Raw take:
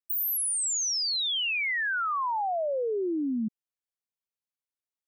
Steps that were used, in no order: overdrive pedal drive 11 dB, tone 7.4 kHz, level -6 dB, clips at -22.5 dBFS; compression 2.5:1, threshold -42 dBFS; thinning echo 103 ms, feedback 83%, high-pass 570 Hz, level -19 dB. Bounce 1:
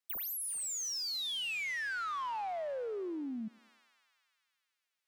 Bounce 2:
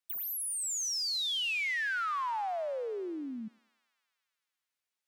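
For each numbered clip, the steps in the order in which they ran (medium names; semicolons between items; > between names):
thinning echo > overdrive pedal > compression; compression > thinning echo > overdrive pedal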